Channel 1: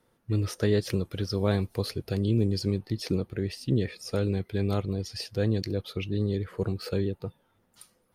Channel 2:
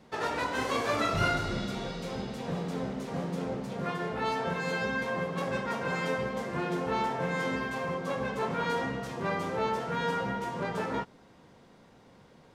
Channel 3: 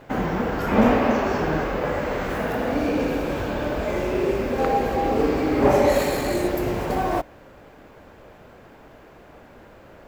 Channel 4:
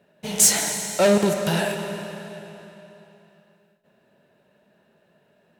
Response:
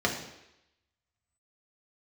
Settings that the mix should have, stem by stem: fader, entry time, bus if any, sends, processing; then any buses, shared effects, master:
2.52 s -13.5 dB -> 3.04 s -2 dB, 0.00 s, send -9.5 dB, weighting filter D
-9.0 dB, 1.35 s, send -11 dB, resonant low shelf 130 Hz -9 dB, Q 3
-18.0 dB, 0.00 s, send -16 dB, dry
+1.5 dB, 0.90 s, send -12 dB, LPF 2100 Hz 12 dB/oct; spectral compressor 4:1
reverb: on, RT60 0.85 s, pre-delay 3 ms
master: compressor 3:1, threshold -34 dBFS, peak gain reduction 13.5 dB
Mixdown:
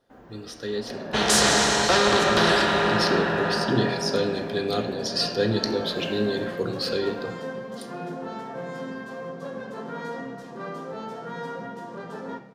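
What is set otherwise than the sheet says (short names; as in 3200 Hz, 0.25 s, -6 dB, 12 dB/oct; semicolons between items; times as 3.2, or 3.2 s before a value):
stem 3 -18.0 dB -> -27.0 dB; master: missing compressor 3:1, threshold -34 dBFS, peak gain reduction 13.5 dB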